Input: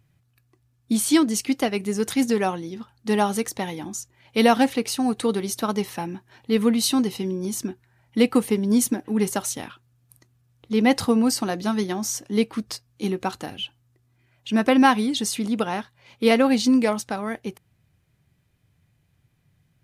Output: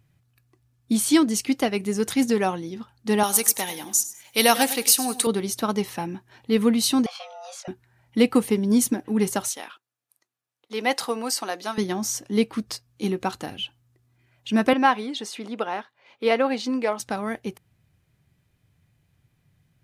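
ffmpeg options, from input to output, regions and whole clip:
-filter_complex "[0:a]asettb=1/sr,asplit=3[s0][s1][s2];[s0]atrim=end=3.234[s3];[s1]atrim=start=3.23:end=5.27,asetpts=PTS-STARTPTS,afade=t=in:d=0.004:c=qsin,afade=t=out:st=2.036:d=0.004:c=qsin,aemphasis=mode=production:type=riaa,aecho=1:1:100|200|300:0.178|0.0445|0.0111,atrim=end_sample=89964[s4];[s2]atrim=start=5.266[s5];[s3][s4]acrossfade=d=0.004:c1=hsin:c2=qsin[s6];[s6][s5]acrossfade=d=0.004:c1=qsin:c2=hsin,asettb=1/sr,asplit=3[s7][s8][s9];[s7]atrim=end=7.064[s10];[s8]atrim=start=7.06:end=7.68,asetpts=PTS-STARTPTS,afade=t=in:d=0.004:c=qsin,afade=t=out:st=0.616:d=0.004:c=qsin,highpass=640,lowpass=4100,asplit=2[s11][s12];[s12]adelay=20,volume=0.631[s13];[s11][s13]amix=inputs=2:normalize=0,atrim=end_sample=27342,afreqshift=320[s14];[s9]atrim=start=7.676[s15];[s10][s14]acrossfade=d=0.004:c1=hsin:c2=qsin[s16];[s16][s15]acrossfade=d=0.004:c1=qsin:c2=hsin,asettb=1/sr,asplit=3[s17][s18][s19];[s17]atrim=end=9.484[s20];[s18]atrim=start=9.48:end=11.78,asetpts=PTS-STARTPTS,afade=t=in:d=0.004:c=qsin,afade=t=out:st=2.296:d=0.004:c=qsin,agate=range=0.316:threshold=0.00251:ratio=16:release=100:detection=peak,highpass=530[s21];[s19]atrim=start=11.776[s22];[s20][s21]acrossfade=d=0.004:c1=hsin:c2=qsin[s23];[s23][s22]acrossfade=d=0.004:c1=qsin:c2=hsin,asettb=1/sr,asplit=3[s24][s25][s26];[s24]atrim=end=14.734[s27];[s25]atrim=start=14.73:end=17,asetpts=PTS-STARTPTS,afade=t=in:d=0.004:c=qsin,afade=t=out:st=2.266:d=0.004:c=qsin,highpass=400,equalizer=f=12000:w=0.35:g=-14.5[s28];[s26]atrim=start=16.996[s29];[s27][s28]acrossfade=d=0.004:c1=hsin:c2=qsin[s30];[s30][s29]acrossfade=d=0.004:c1=qsin:c2=hsin"

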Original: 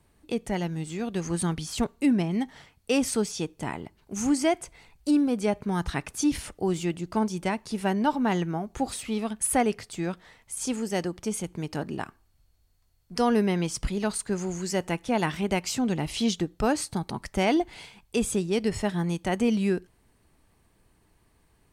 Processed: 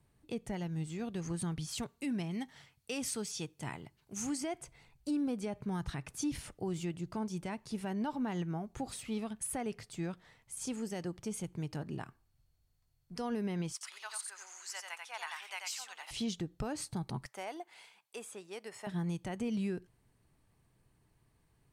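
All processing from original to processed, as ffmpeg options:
-filter_complex "[0:a]asettb=1/sr,asplit=3[s0][s1][s2];[s0]atrim=end=1.684[s3];[s1]atrim=start=1.68:end=4.41,asetpts=PTS-STARTPTS,afade=t=in:d=0.004:c=qsin,afade=t=out:st=2.726:d=0.004:c=qsin,highpass=41,tiltshelf=f=1300:g=-4[s4];[s2]atrim=start=4.406[s5];[s3][s4]acrossfade=d=0.004:c1=hsin:c2=qsin[s6];[s6][s5]acrossfade=d=0.004:c1=qsin:c2=hsin,asettb=1/sr,asplit=3[s7][s8][s9];[s7]atrim=end=13.724[s10];[s8]atrim=start=13.72:end=16.11,asetpts=PTS-STARTPTS,afade=t=in:d=0.004:c=qsin,afade=t=out:st=2.386:d=0.004:c=qsin,highpass=f=970:w=0.5412,highpass=f=970:w=1.3066,aecho=1:1:89:0.631,atrim=end_sample=105399[s11];[s9]atrim=start=16.106[s12];[s10][s11]acrossfade=d=0.004:c1=hsin:c2=qsin[s13];[s13][s12]acrossfade=d=0.004:c1=qsin:c2=hsin,asettb=1/sr,asplit=3[s14][s15][s16];[s14]atrim=end=17.264[s17];[s15]atrim=start=17.26:end=18.87,asetpts=PTS-STARTPTS,afade=t=in:d=0.004:c=qsin,afade=t=out:st=1.606:d=0.004:c=qsin,highpass=700,acrossover=split=940|2300|7200[s18][s19][s20][s21];[s18]acompressor=threshold=0.0251:ratio=3[s22];[s19]acompressor=threshold=0.00794:ratio=3[s23];[s20]acompressor=threshold=0.00251:ratio=3[s24];[s21]acompressor=threshold=0.00631:ratio=3[s25];[s22][s23][s24][s25]amix=inputs=4:normalize=0[s26];[s16]atrim=start=18.866[s27];[s17][s26]acrossfade=d=0.004:c1=hsin:c2=qsin[s28];[s28][s27]acrossfade=d=0.004:c1=qsin:c2=hsin,equalizer=f=130:w=2.4:g=10,alimiter=limit=0.119:level=0:latency=1:release=103,volume=0.355"

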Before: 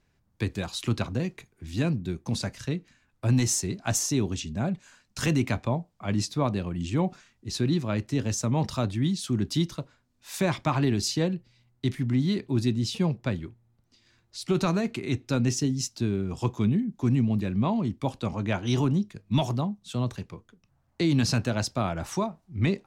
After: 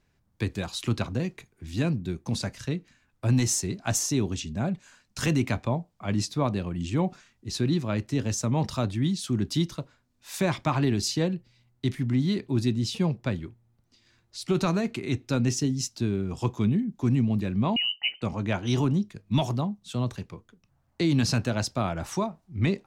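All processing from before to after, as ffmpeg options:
-filter_complex "[0:a]asettb=1/sr,asplit=3[s0][s1][s2];[s0]atrim=end=17.764[s3];[s1]atrim=start=17.76:end=18.22,asetpts=PTS-STARTPTS,afade=t=in:d=0.004:c=qsin,afade=t=out:st=0.456:d=0.004:c=qsin,equalizer=f=1800:w=2:g=-5,lowpass=f=2600:t=q:w=0.5098,lowpass=f=2600:t=q:w=0.6013,lowpass=f=2600:t=q:w=0.9,lowpass=f=2600:t=q:w=2.563,afreqshift=-3100[s4];[s2]atrim=start=18.216[s5];[s3][s4]acrossfade=d=0.004:c1=hsin:c2=qsin[s6];[s6][s5]acrossfade=d=0.004:c1=qsin:c2=hsin"

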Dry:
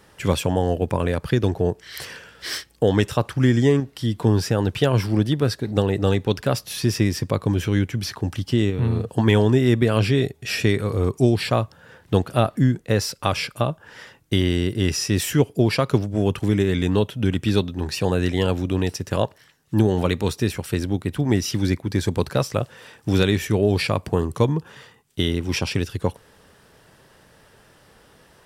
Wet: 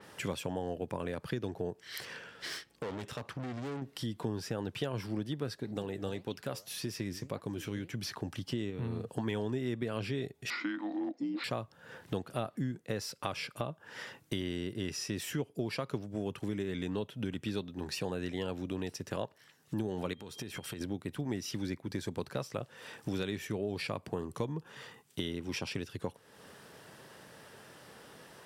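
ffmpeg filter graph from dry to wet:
-filter_complex "[0:a]asettb=1/sr,asplit=3[s0][s1][s2];[s0]atrim=end=2.004[s3];[s1]atrim=start=2:end=3.82,asetpts=PTS-STARTPTS,afade=t=in:d=0.004:c=qsin,afade=t=out:st=1.816:d=0.004:c=qsin,highshelf=f=6800:g=-8,aeval=exprs='(tanh(22.4*val(0)+0.7)-tanh(0.7))/22.4':c=same[s4];[s2]atrim=start=3.816[s5];[s3][s4]acrossfade=d=0.004:c1=hsin:c2=qsin[s6];[s6][s5]acrossfade=d=0.004:c1=qsin:c2=hsin,asettb=1/sr,asplit=3[s7][s8][s9];[s7]atrim=end=5.744[s10];[s8]atrim=start=5.74:end=7.9,asetpts=PTS-STARTPTS,afade=t=in:d=0.004:c=qsin,afade=t=out:st=2.156:d=0.004:c=qsin,highshelf=f=6300:g=5.5,flanger=delay=2.8:depth=9:regen=80:speed=1.8:shape=triangular[s11];[s9]atrim=start=7.896[s12];[s10][s11]acrossfade=d=0.004:c1=hsin:c2=qsin[s13];[s13][s12]acrossfade=d=0.004:c1=qsin:c2=hsin,asettb=1/sr,asplit=3[s14][s15][s16];[s14]atrim=end=10.504[s17];[s15]atrim=start=10.5:end=11.44,asetpts=PTS-STARTPTS,afade=t=in:d=0.004:c=qsin,afade=t=out:st=0.936:d=0.004:c=qsin,afreqshift=-420,highpass=f=260:w=0.5412,highpass=f=260:w=1.3066,equalizer=f=520:t=q:w=4:g=6,equalizer=f=890:t=q:w=4:g=4,equalizer=f=3000:t=q:w=4:g=-7,lowpass=f=4300:w=0.5412,lowpass=f=4300:w=1.3066[s18];[s16]atrim=start=11.436[s19];[s17][s18]acrossfade=d=0.004:c1=hsin:c2=qsin[s20];[s20][s19]acrossfade=d=0.004:c1=qsin:c2=hsin,asettb=1/sr,asplit=3[s21][s22][s23];[s21]atrim=end=20.134[s24];[s22]atrim=start=20.13:end=20.81,asetpts=PTS-STARTPTS,afade=t=in:d=0.004:c=qsin,afade=t=out:st=0.676:d=0.004:c=qsin,aeval=exprs='val(0)+0.00631*sin(2*PI*3200*n/s)':c=same,acompressor=threshold=0.0316:ratio=10:attack=3.2:release=140:knee=1:detection=peak[s25];[s23]atrim=start=20.806[s26];[s24][s25]acrossfade=d=0.004:c1=hsin:c2=qsin[s27];[s27][s26]acrossfade=d=0.004:c1=qsin:c2=hsin,highpass=130,acompressor=threshold=0.01:ratio=2.5,adynamicequalizer=threshold=0.00224:dfrequency=4900:dqfactor=0.7:tfrequency=4900:tqfactor=0.7:attack=5:release=100:ratio=0.375:range=2:mode=cutabove:tftype=highshelf"

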